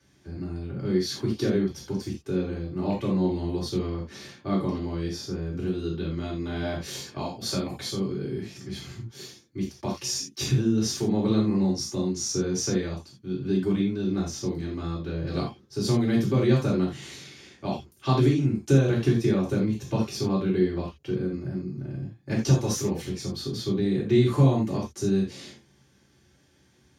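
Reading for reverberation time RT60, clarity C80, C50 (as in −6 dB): non-exponential decay, 13.5 dB, 6.5 dB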